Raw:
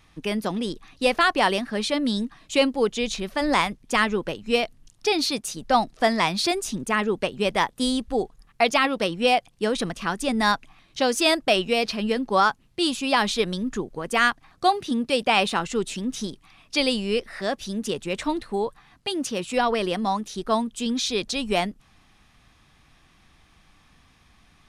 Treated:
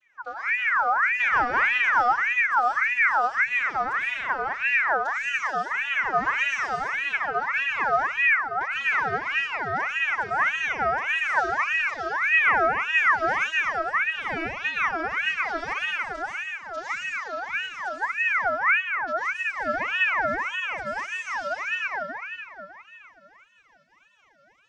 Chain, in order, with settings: vocoder on a gliding note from A#3, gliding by +10 st; resonant high shelf 3300 Hz +8 dB, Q 3; compressor 2:1, threshold -34 dBFS, peak gain reduction 11 dB; tilt -4.5 dB/oct; reverb RT60 3.3 s, pre-delay 65 ms, DRR -9.5 dB; ring modulator with a swept carrier 1600 Hz, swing 40%, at 1.7 Hz; gain -6 dB

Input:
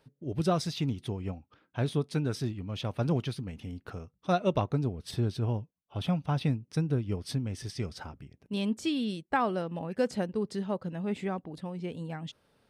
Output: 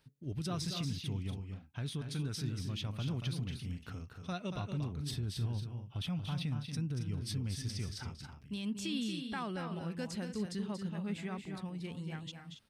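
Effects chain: bell 550 Hz -12 dB 2.2 oct; limiter -29.5 dBFS, peak gain reduction 8.5 dB; on a send: loudspeakers at several distances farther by 80 m -7 dB, 94 m -11 dB

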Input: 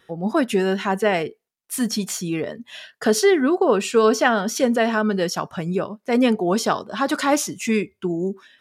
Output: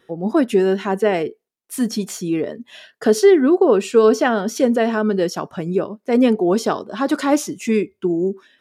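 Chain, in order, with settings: bell 350 Hz +8.5 dB 1.6 oct; gain -3 dB

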